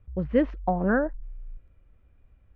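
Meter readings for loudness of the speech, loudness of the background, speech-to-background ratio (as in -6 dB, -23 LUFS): -26.0 LUFS, -44.0 LUFS, 18.0 dB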